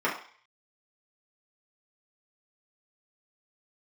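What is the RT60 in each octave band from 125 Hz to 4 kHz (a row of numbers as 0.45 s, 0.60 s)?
0.30 s, 0.35 s, 0.40 s, 0.50 s, 0.60 s, 0.55 s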